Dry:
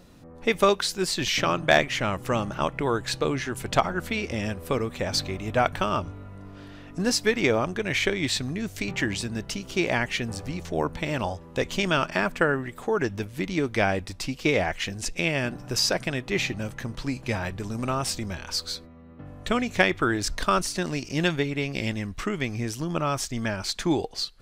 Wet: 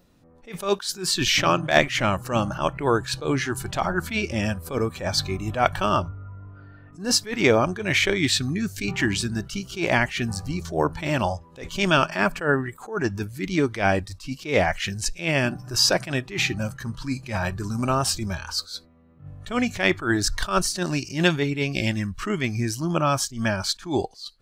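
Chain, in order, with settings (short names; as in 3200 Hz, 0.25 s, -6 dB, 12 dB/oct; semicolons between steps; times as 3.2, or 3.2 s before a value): spectral noise reduction 13 dB; 6.08–6.93 LPF 1700 Hz 12 dB/oct; attack slew limiter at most 160 dB/s; gain +5 dB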